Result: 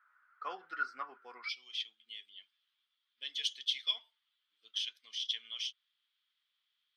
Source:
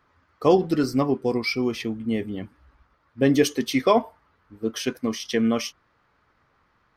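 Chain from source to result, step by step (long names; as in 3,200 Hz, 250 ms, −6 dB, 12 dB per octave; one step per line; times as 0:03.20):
four-pole ladder band-pass 1,500 Hz, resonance 80%, from 0:01.48 3,500 Hz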